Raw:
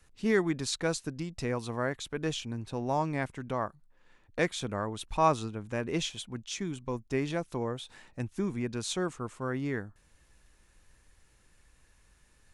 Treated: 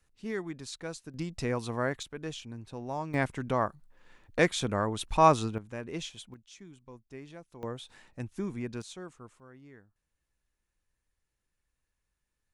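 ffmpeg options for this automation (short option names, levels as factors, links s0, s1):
-af "asetnsamples=n=441:p=0,asendcmd='1.14 volume volume 1dB;2.03 volume volume -6dB;3.14 volume volume 4dB;5.58 volume volume -6dB;6.34 volume volume -15dB;7.63 volume volume -3dB;8.82 volume volume -12dB;9.4 volume volume -20dB',volume=0.355"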